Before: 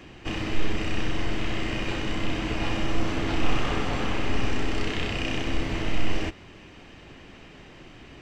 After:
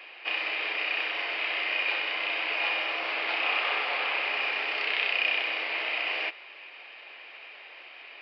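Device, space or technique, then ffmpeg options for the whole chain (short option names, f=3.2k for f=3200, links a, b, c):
musical greeting card: -af "aresample=11025,aresample=44100,highpass=f=550:w=0.5412,highpass=f=550:w=1.3066,equalizer=f=2.4k:t=o:w=0.48:g=10.5"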